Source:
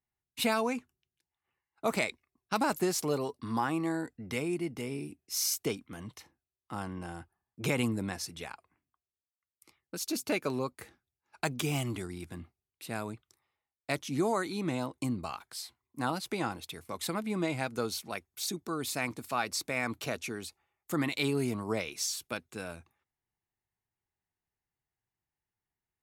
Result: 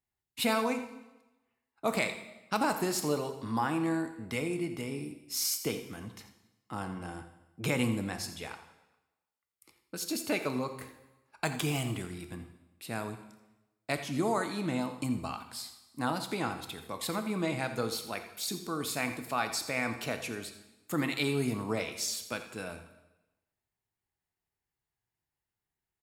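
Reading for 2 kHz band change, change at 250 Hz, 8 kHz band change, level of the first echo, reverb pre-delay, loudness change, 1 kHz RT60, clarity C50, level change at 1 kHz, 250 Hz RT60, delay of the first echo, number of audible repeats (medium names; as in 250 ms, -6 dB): +0.5 dB, +0.5 dB, -0.5 dB, -14.0 dB, 6 ms, +0.5 dB, 1.0 s, 9.0 dB, +0.5 dB, 1.0 s, 85 ms, 1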